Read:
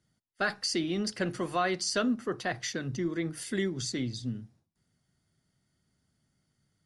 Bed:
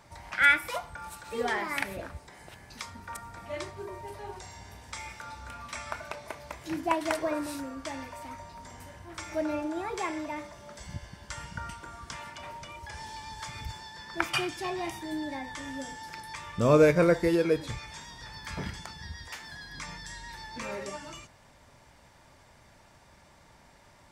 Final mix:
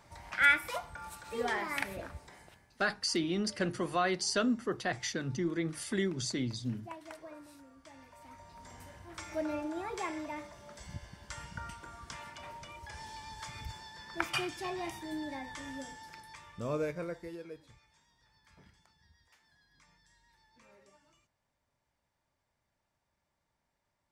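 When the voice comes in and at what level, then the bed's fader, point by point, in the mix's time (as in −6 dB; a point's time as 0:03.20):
2.40 s, −1.5 dB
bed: 0:02.34 −3.5 dB
0:02.77 −18.5 dB
0:07.82 −18.5 dB
0:08.71 −4.5 dB
0:15.73 −4.5 dB
0:17.91 −25 dB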